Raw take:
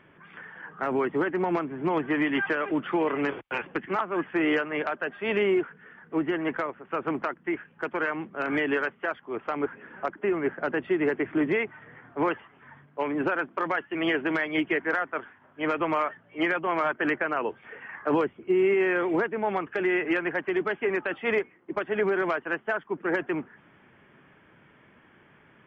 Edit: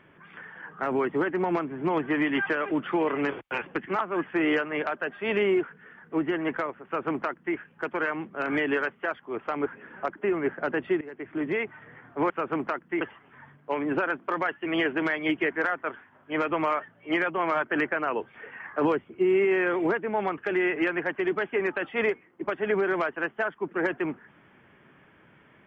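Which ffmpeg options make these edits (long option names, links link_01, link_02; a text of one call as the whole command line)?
ffmpeg -i in.wav -filter_complex "[0:a]asplit=4[link_01][link_02][link_03][link_04];[link_01]atrim=end=11.01,asetpts=PTS-STARTPTS,afade=type=out:start_time=11.006:duration=0.004:curve=hsin:silence=0.0630957[link_05];[link_02]atrim=start=11.01:end=12.302,asetpts=PTS-STARTPTS,afade=type=in:duration=0.73:silence=0.0630957[link_06];[link_03]atrim=start=6.848:end=7.562[link_07];[link_04]atrim=start=12.298[link_08];[link_05][link_06]concat=n=2:v=0:a=1[link_09];[link_09][link_07]acrossfade=duration=0.004:curve1=hsin:curve2=hsin[link_10];[link_10][link_08]acrossfade=duration=0.004:curve1=hsin:curve2=hsin" out.wav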